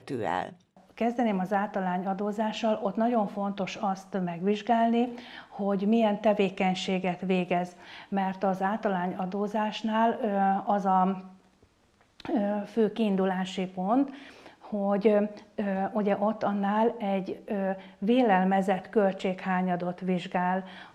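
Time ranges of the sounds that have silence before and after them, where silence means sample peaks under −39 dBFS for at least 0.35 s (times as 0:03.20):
0:00.98–0:11.26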